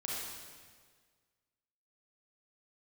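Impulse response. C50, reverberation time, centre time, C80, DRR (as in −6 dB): −3.0 dB, 1.7 s, 112 ms, 0.0 dB, −5.5 dB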